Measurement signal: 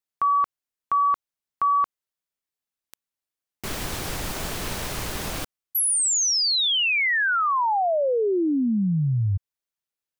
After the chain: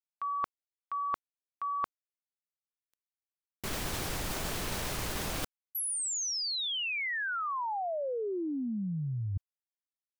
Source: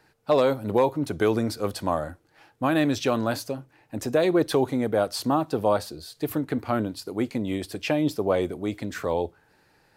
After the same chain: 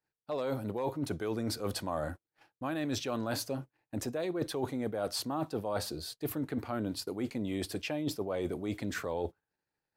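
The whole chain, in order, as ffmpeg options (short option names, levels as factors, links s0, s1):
-af "agate=range=0.0224:threshold=0.00398:ratio=3:release=50:detection=peak,areverse,acompressor=threshold=0.02:ratio=12:attack=49:release=78:knee=6:detection=rms,areverse"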